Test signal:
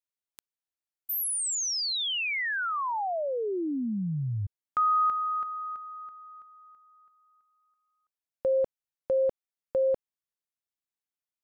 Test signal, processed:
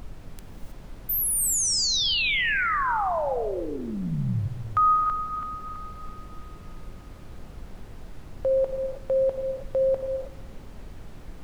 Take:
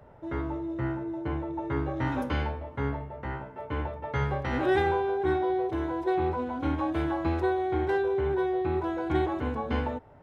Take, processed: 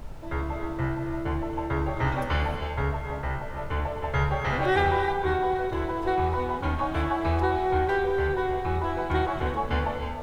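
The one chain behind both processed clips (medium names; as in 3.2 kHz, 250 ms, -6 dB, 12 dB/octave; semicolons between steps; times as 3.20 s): peaking EQ 280 Hz -11 dB 1 oct; added noise brown -44 dBFS; on a send: bucket-brigade echo 60 ms, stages 1024, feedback 71%, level -18.5 dB; on the sum: gated-style reverb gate 340 ms rising, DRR 5.5 dB; trim +4.5 dB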